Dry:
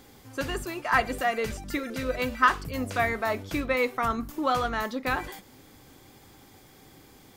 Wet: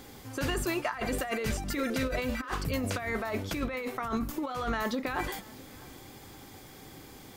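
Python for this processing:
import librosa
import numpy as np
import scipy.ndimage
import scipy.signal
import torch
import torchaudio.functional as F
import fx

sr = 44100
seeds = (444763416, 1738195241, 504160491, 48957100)

p1 = fx.over_compress(x, sr, threshold_db=-32.0, ratio=-1.0)
y = p1 + fx.echo_single(p1, sr, ms=654, db=-23.0, dry=0)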